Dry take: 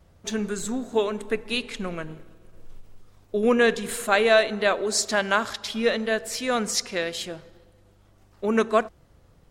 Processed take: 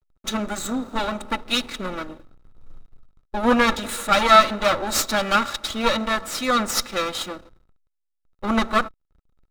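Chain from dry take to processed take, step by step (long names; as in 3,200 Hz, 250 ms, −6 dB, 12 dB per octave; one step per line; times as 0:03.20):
lower of the sound and its delayed copy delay 3.5 ms
slack as between gear wheels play −44 dBFS
hollow resonant body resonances 1,300/3,800 Hz, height 13 dB, ringing for 30 ms
level +3.5 dB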